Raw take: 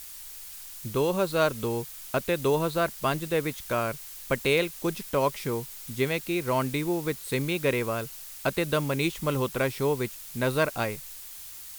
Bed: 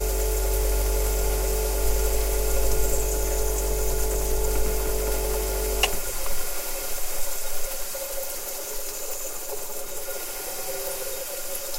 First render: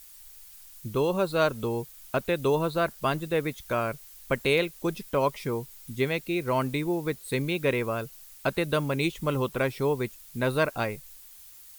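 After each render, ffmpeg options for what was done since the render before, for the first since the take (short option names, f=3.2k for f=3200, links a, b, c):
-af "afftdn=nr=9:nf=-43"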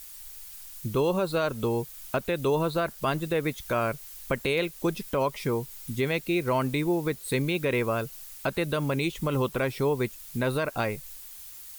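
-filter_complex "[0:a]asplit=2[a][b];[b]acompressor=threshold=-34dB:ratio=6,volume=-2dB[c];[a][c]amix=inputs=2:normalize=0,alimiter=limit=-16dB:level=0:latency=1:release=45"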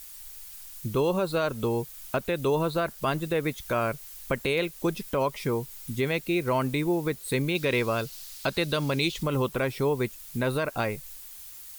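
-filter_complex "[0:a]asettb=1/sr,asplit=3[a][b][c];[a]atrim=end=7.554[d];[b]atrim=start=7.55:end=9.23,asetpts=PTS-STARTPTS,afade=t=in:d=0.004:c=qsin,afade=t=out:st=1.676:d=0.004:c=qsin,equalizer=f=4.4k:w=1.2:g=9.5[e];[c]atrim=start=9.226[f];[d][e]acrossfade=d=0.004:c1=hsin:c2=qsin[g];[g][f]acrossfade=d=0.004:c1=qsin:c2=hsin"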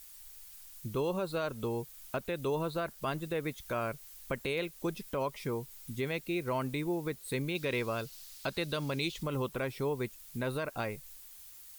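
-af "volume=-7.5dB"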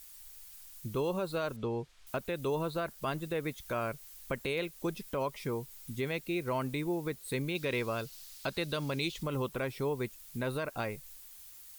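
-filter_complex "[0:a]asettb=1/sr,asplit=3[a][b][c];[a]atrim=end=1.564[d];[b]atrim=start=1.56:end=2.07,asetpts=PTS-STARTPTS,afade=t=in:d=0.004:c=qsin,afade=t=out:st=0.506:d=0.004:c=qsin,lowpass=4k[e];[c]atrim=start=2.066[f];[d][e]acrossfade=d=0.004:c1=hsin:c2=qsin[g];[g][f]acrossfade=d=0.004:c1=qsin:c2=hsin"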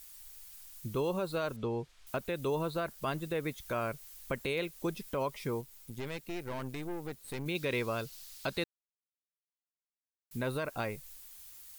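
-filter_complex "[0:a]asettb=1/sr,asplit=3[a][b][c];[a]atrim=end=5.614[d];[b]atrim=start=5.61:end=7.46,asetpts=PTS-STARTPTS,afade=t=in:d=0.004:c=qsin,afade=t=out:st=1.846:d=0.004:c=qsin,aeval=exprs='(tanh(56.2*val(0)+0.8)-tanh(0.8))/56.2':c=same[e];[c]atrim=start=7.456[f];[d][e]acrossfade=d=0.004:c1=hsin:c2=qsin[g];[g][f]acrossfade=d=0.004:c1=qsin:c2=hsin,asplit=3[h][i][j];[h]atrim=end=8.64,asetpts=PTS-STARTPTS,afade=t=out:st=8.636:d=0.004:c=hsin[k];[i]atrim=start=8.64:end=10.31,asetpts=PTS-STARTPTS,volume=0[l];[j]atrim=start=10.31,asetpts=PTS-STARTPTS,afade=t=in:d=0.004:c=hsin[m];[k][l][m]concat=n=3:v=0:a=1"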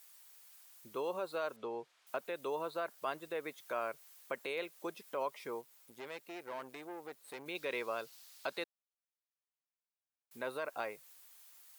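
-af "highpass=540,highshelf=f=2.1k:g=-8"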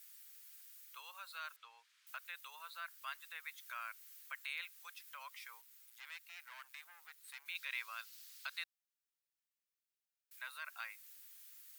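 -af "highpass=f=1.4k:w=0.5412,highpass=f=1.4k:w=1.3066,equalizer=f=15k:w=4.2:g=7.5"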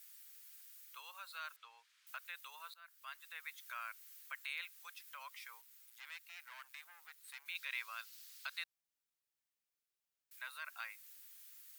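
-filter_complex "[0:a]asplit=2[a][b];[a]atrim=end=2.74,asetpts=PTS-STARTPTS,afade=t=out:st=2.736:d=0.004:c=hsin:silence=0.125893[c];[b]atrim=start=2.74,asetpts=PTS-STARTPTS,afade=t=in:d=0.67:silence=0.125893[d];[c][d]concat=n=2:v=0:a=1"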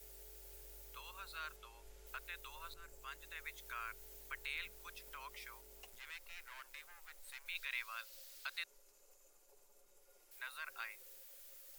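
-filter_complex "[1:a]volume=-36.5dB[a];[0:a][a]amix=inputs=2:normalize=0"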